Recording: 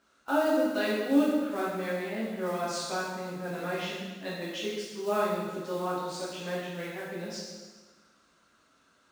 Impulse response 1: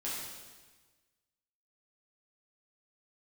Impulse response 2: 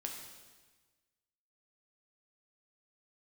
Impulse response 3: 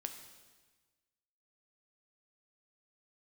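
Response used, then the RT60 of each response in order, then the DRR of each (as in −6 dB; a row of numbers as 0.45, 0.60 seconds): 1; 1.3, 1.3, 1.3 seconds; −8.5, 0.5, 5.5 decibels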